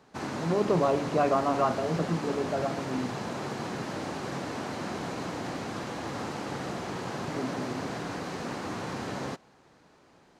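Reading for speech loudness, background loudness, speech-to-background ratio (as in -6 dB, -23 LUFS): -29.5 LUFS, -35.5 LUFS, 6.0 dB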